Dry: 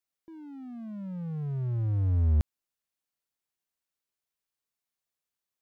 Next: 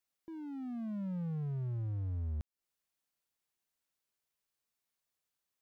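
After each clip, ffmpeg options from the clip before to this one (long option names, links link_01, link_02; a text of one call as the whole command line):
ffmpeg -i in.wav -af "acompressor=threshold=-35dB:ratio=16,volume=1dB" out.wav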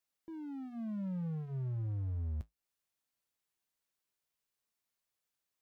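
ffmpeg -i in.wav -af "flanger=delay=9.2:depth=1.4:regen=-63:speed=0.43:shape=sinusoidal,volume=3.5dB" out.wav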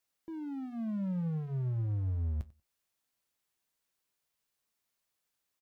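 ffmpeg -i in.wav -af "aecho=1:1:94|188:0.0891|0.0143,volume=4dB" out.wav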